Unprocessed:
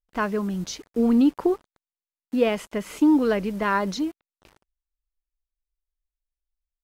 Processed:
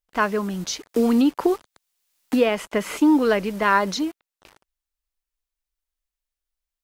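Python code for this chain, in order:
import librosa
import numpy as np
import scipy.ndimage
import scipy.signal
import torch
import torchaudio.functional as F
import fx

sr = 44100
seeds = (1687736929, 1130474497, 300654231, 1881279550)

y = fx.low_shelf(x, sr, hz=350.0, db=-8.5)
y = fx.band_squash(y, sr, depth_pct=70, at=(0.89, 2.97))
y = y * librosa.db_to_amplitude(6.0)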